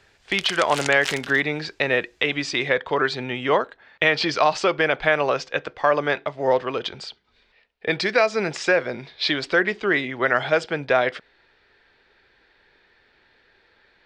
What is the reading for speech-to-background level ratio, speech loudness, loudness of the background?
9.5 dB, -22.0 LUFS, -31.5 LUFS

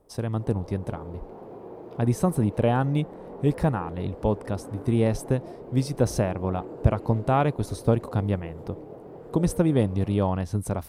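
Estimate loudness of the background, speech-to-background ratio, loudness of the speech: -41.5 LUFS, 15.5 dB, -26.0 LUFS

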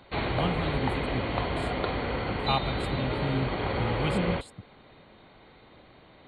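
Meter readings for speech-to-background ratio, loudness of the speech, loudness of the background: -4.5 dB, -34.5 LUFS, -30.0 LUFS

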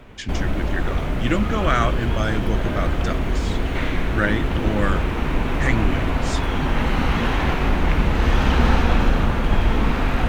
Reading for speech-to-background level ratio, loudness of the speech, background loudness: -4.0 dB, -26.5 LUFS, -22.5 LUFS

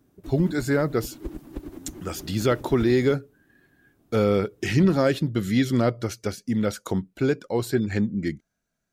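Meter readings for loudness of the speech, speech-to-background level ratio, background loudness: -24.5 LUFS, 16.5 dB, -41.0 LUFS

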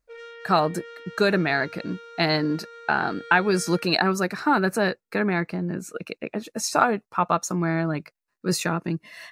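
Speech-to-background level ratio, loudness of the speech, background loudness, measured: 18.0 dB, -24.5 LUFS, -42.5 LUFS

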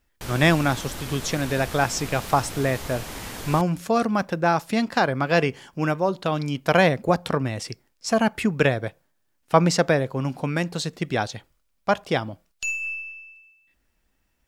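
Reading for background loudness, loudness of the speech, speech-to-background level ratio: -35.0 LUFS, -24.0 LUFS, 11.0 dB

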